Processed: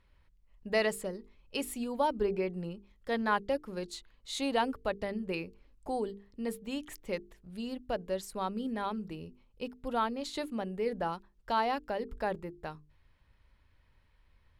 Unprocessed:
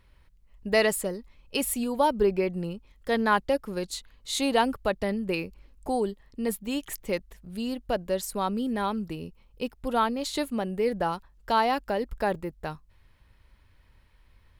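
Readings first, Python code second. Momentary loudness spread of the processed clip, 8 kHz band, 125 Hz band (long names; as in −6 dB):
14 LU, −11.0 dB, −7.0 dB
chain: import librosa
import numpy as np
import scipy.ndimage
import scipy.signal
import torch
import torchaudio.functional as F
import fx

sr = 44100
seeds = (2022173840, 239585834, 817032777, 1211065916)

y = fx.high_shelf(x, sr, hz=10000.0, db=-12.0)
y = fx.hum_notches(y, sr, base_hz=50, count=9)
y = y * librosa.db_to_amplitude(-6.0)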